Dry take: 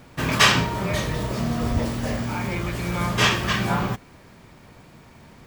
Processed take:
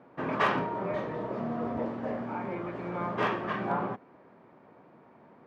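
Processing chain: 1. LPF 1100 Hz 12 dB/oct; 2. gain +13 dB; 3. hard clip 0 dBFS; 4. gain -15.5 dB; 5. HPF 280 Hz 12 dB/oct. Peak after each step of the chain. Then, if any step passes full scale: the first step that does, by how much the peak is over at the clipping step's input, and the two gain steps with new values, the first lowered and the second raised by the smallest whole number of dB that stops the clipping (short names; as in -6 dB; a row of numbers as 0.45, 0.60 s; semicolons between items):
-9.5, +3.5, 0.0, -15.5, -13.0 dBFS; step 2, 3.5 dB; step 2 +9 dB, step 4 -11.5 dB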